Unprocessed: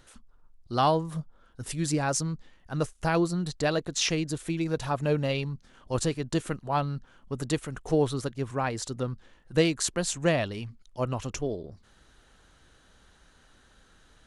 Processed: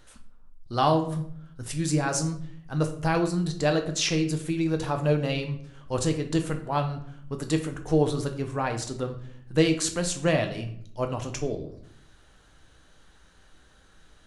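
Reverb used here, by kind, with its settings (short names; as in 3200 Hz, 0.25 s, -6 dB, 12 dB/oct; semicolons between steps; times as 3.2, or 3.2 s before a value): shoebox room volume 93 m³, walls mixed, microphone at 0.47 m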